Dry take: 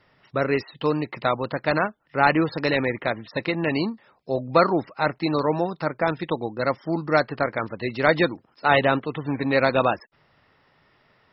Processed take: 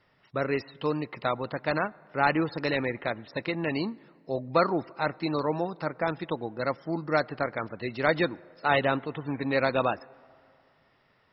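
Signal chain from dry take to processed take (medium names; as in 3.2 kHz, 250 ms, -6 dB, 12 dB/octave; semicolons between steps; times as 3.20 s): on a send: treble shelf 4.1 kHz -9.5 dB + reverberation RT60 2.4 s, pre-delay 77 ms, DRR 25 dB; on the sum: trim -5.5 dB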